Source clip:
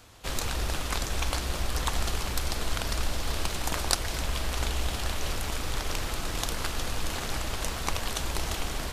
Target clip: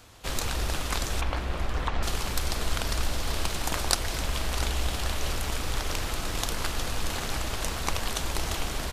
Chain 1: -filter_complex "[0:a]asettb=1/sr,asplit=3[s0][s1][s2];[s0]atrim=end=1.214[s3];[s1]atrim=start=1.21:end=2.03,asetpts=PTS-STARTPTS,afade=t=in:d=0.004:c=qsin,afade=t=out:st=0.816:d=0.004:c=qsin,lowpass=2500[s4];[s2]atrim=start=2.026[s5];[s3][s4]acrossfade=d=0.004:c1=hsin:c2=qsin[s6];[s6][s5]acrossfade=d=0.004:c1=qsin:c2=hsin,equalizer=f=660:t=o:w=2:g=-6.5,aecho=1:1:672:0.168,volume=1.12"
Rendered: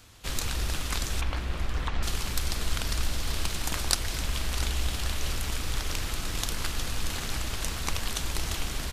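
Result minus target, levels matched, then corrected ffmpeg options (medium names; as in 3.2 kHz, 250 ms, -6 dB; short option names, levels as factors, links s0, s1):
500 Hz band -4.5 dB
-filter_complex "[0:a]asettb=1/sr,asplit=3[s0][s1][s2];[s0]atrim=end=1.214[s3];[s1]atrim=start=1.21:end=2.03,asetpts=PTS-STARTPTS,afade=t=in:d=0.004:c=qsin,afade=t=out:st=0.816:d=0.004:c=qsin,lowpass=2500[s4];[s2]atrim=start=2.026[s5];[s3][s4]acrossfade=d=0.004:c1=hsin:c2=qsin[s6];[s6][s5]acrossfade=d=0.004:c1=qsin:c2=hsin,aecho=1:1:672:0.168,volume=1.12"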